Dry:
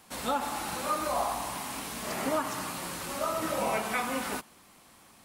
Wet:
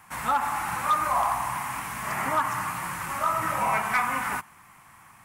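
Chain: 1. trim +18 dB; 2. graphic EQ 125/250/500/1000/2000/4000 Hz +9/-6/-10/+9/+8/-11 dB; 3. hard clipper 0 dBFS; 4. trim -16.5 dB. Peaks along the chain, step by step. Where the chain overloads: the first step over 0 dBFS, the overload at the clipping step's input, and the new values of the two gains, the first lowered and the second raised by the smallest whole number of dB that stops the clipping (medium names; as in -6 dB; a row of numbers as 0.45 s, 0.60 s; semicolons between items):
+0.5 dBFS, +6.0 dBFS, 0.0 dBFS, -16.5 dBFS; step 1, 6.0 dB; step 1 +12 dB, step 4 -10.5 dB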